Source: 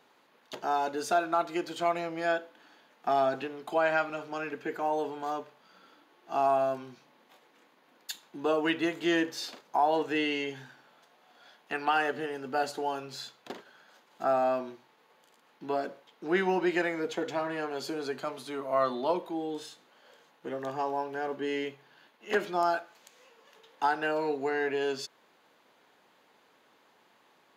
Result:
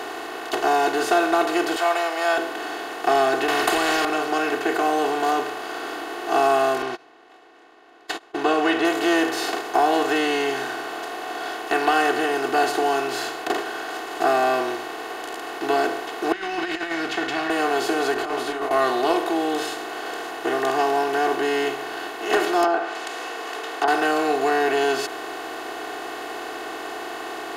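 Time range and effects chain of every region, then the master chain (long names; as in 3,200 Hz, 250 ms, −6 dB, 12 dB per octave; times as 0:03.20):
0:01.76–0:02.38: inverse Chebyshev high-pass filter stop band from 240 Hz, stop band 50 dB + notch filter 6,400 Hz, Q 21
0:03.48–0:04.05: parametric band 1,400 Hz +6.5 dB 1.7 octaves + downward compressor 2 to 1, threshold −25 dBFS + every bin compressed towards the loudest bin 4 to 1
0:06.82–0:08.85: low-pass filter 3,800 Hz + noise gate −52 dBFS, range −48 dB
0:16.32–0:17.50: drawn EQ curve 150 Hz 0 dB, 310 Hz −12 dB, 480 Hz −28 dB, 700 Hz −18 dB, 1,100 Hz −13 dB, 1,800 Hz −3 dB, 2,800 Hz −1 dB, 5,200 Hz −6 dB, 7,600 Hz −18 dB, 12,000 Hz −28 dB + compressor whose output falls as the input rises −42 dBFS, ratio −0.5
0:18.14–0:18.71: low-pass filter 2,600 Hz 6 dB per octave + compressor whose output falls as the input rises −40 dBFS, ratio −0.5 + micro pitch shift up and down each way 48 cents
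0:22.64–0:23.88: treble cut that deepens with the level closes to 830 Hz, closed at −25 dBFS + meter weighting curve A
whole clip: compressor on every frequency bin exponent 0.4; comb filter 2.7 ms, depth 75%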